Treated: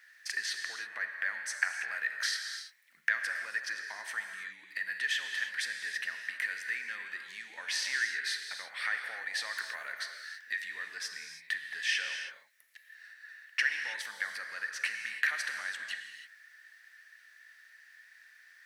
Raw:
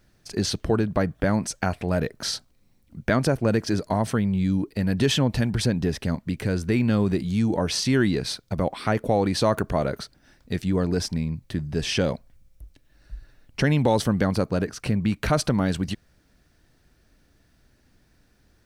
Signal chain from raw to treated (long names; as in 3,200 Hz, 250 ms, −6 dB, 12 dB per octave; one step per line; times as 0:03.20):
downward compressor 4 to 1, threshold −34 dBFS, peak gain reduction 15.5 dB
high-pass with resonance 1,800 Hz, resonance Q 9.1
reverb whose tail is shaped and stops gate 350 ms flat, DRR 4 dB